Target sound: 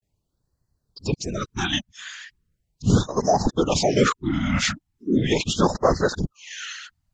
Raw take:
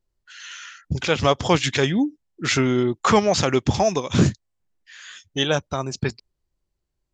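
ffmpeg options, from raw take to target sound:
-filter_complex "[0:a]areverse,asplit=2[s0][s1];[s1]acompressor=threshold=0.0224:ratio=6,volume=1[s2];[s0][s2]amix=inputs=2:normalize=0,afftfilt=real='hypot(re,im)*cos(2*PI*random(0))':imag='hypot(re,im)*sin(2*PI*random(1))':win_size=512:overlap=0.75,afftfilt=real='re*(1-between(b*sr/1024,390*pow(2900/390,0.5+0.5*sin(2*PI*0.38*pts/sr))/1.41,390*pow(2900/390,0.5+0.5*sin(2*PI*0.38*pts/sr))*1.41))':imag='im*(1-between(b*sr/1024,390*pow(2900/390,0.5+0.5*sin(2*PI*0.38*pts/sr))/1.41,390*pow(2900/390,0.5+0.5*sin(2*PI*0.38*pts/sr))*1.41))':win_size=1024:overlap=0.75,volume=1.58"

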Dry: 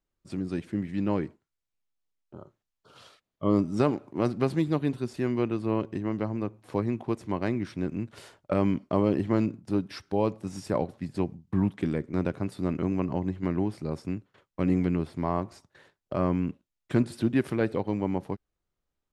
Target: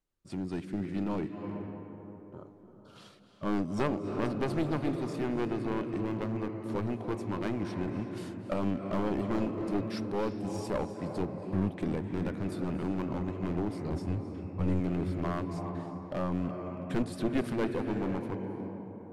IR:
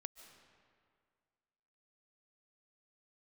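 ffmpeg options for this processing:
-filter_complex "[0:a]asettb=1/sr,asplit=3[s0][s1][s2];[s0]atrim=end=13.924[s3];[s1]atrim=start=13.92:end=14.8,asetpts=PTS-STARTPTS,afade=t=in:d=0.004:c=qsin,afade=t=out:st=0.876:d=0.004:c=qsin,equalizer=f=80:w=1.2:g=12[s4];[s2]atrim=start=14.796[s5];[s3][s4]acrossfade=d=0.004:c1=hsin:c2=qsin[s6];[s6][s5]acrossfade=d=0.004:c1=qsin:c2=hsin[s7];[1:a]atrim=start_sample=2205,asetrate=23814,aresample=44100[s8];[s7][s8]afir=irnorm=-1:irlink=0,aeval=exprs='clip(val(0),-1,0.0316)':c=same"

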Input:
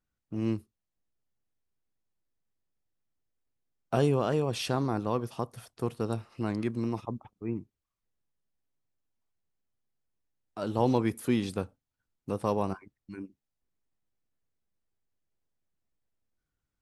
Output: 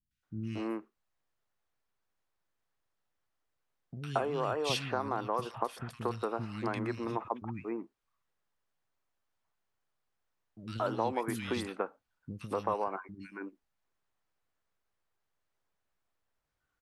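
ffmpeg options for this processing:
-filter_complex "[0:a]equalizer=f=1400:w=0.39:g=13.5,acompressor=threshold=0.0631:ratio=10,acrossover=split=240|2100[s0][s1][s2];[s2]adelay=110[s3];[s1]adelay=230[s4];[s0][s4][s3]amix=inputs=3:normalize=0,volume=0.75"

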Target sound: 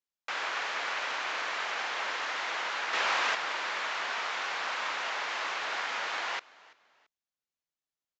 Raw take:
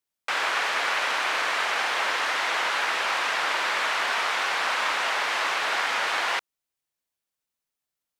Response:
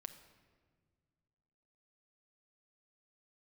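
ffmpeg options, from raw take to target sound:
-filter_complex "[0:a]asettb=1/sr,asplit=3[s0][s1][s2];[s0]atrim=end=2.934[s3];[s1]atrim=start=2.93:end=3.35,asetpts=PTS-STARTPTS,afade=t=in:d=0.004:c=qsin,afade=t=out:st=0.416:d=0.004:c=qsin,acontrast=45[s4];[s2]atrim=start=3.346[s5];[s3][s4]acrossfade=d=0.004:c1=hsin:c2=qsin[s6];[s6][s5]acrossfade=d=0.004:c1=qsin:c2=hsin,asplit=2[s7][s8];[s8]asplit=2[s9][s10];[s9]adelay=336,afreqshift=-46,volume=0.0708[s11];[s10]adelay=672,afreqshift=-92,volume=0.0226[s12];[s11][s12]amix=inputs=2:normalize=0[s13];[s7][s13]amix=inputs=2:normalize=0,aresample=16000,aresample=44100,volume=0.398"

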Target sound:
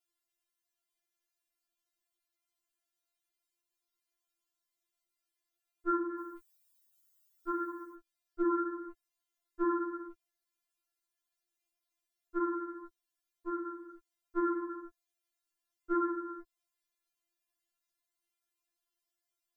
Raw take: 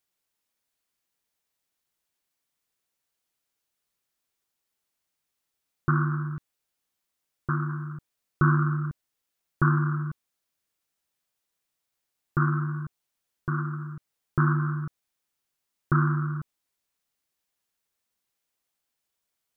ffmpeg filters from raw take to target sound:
-filter_complex "[0:a]asplit=3[s0][s1][s2];[s0]afade=t=out:st=6.17:d=0.02[s3];[s1]aemphasis=mode=production:type=75kf,afade=t=in:st=6.17:d=0.02,afade=t=out:st=7.94:d=0.02[s4];[s2]afade=t=in:st=7.94:d=0.02[s5];[s3][s4][s5]amix=inputs=3:normalize=0,afftfilt=real='re*4*eq(mod(b,16),0)':imag='im*4*eq(mod(b,16),0)':win_size=2048:overlap=0.75,volume=0.631"

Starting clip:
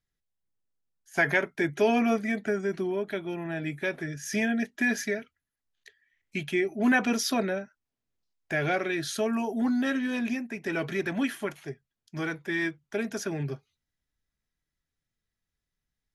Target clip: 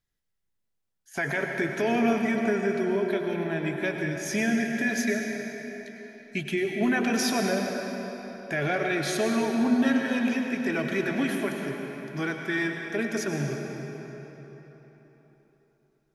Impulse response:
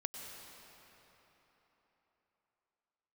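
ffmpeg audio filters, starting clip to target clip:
-filter_complex "[0:a]alimiter=limit=0.1:level=0:latency=1:release=38[s0];[1:a]atrim=start_sample=2205[s1];[s0][s1]afir=irnorm=-1:irlink=0,volume=1.58"

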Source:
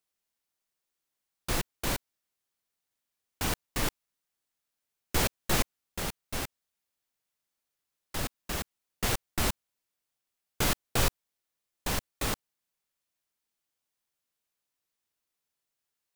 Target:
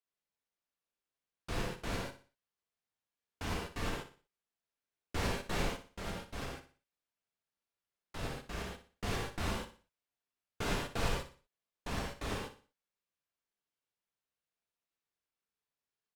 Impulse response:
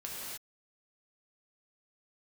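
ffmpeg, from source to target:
-filter_complex "[0:a]aemphasis=mode=reproduction:type=50fm,aecho=1:1:60|120|180|240:0.266|0.0931|0.0326|0.0114[s0];[1:a]atrim=start_sample=2205,atrim=end_sample=6615[s1];[s0][s1]afir=irnorm=-1:irlink=0,volume=0.668"

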